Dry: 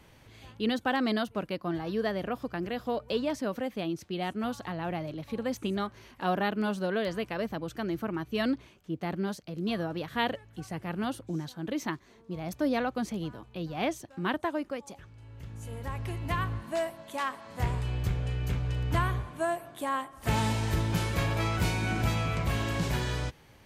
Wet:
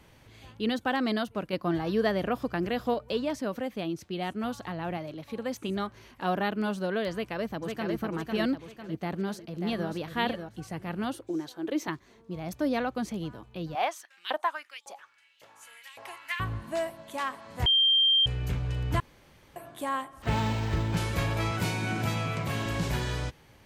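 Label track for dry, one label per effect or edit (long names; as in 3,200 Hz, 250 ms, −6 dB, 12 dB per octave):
1.530000	2.940000	clip gain +4 dB
4.970000	5.690000	low-shelf EQ 150 Hz −8.5 dB
7.120000	7.950000	delay throw 500 ms, feedback 45%, level −3.5 dB
8.980000	9.890000	delay throw 590 ms, feedback 15%, level −7 dB
11.130000	11.880000	low shelf with overshoot 260 Hz −8 dB, Q 3
13.750000	16.400000	auto-filter high-pass saw up 1.8 Hz 580–3,700 Hz
17.660000	18.260000	beep over 3,170 Hz −19 dBFS
19.000000	19.560000	fill with room tone
20.220000	20.970000	linearly interpolated sample-rate reduction rate divided by 4×
21.510000	22.660000	high-pass filter 100 Hz 24 dB per octave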